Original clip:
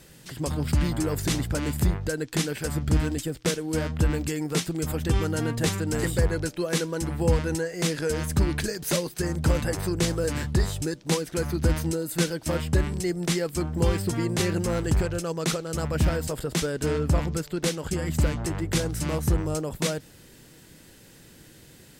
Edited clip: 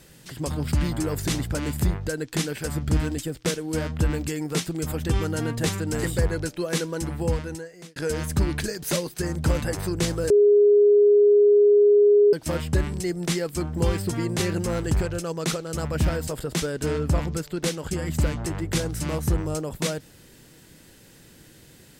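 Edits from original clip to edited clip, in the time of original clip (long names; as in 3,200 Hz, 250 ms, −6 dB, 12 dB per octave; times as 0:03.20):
0:07.05–0:07.96: fade out
0:10.30–0:12.33: beep over 412 Hz −12.5 dBFS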